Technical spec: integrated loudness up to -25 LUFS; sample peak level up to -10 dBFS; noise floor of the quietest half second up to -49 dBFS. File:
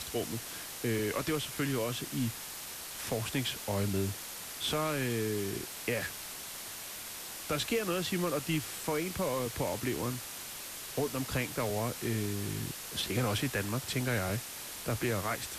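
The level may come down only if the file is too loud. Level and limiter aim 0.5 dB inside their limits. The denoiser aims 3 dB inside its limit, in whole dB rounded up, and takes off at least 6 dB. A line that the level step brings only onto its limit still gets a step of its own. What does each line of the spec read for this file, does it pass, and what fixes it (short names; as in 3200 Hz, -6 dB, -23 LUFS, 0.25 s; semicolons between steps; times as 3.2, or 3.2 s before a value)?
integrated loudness -34.0 LUFS: OK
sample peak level -20.0 dBFS: OK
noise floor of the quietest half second -43 dBFS: fail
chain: denoiser 9 dB, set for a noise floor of -43 dBFS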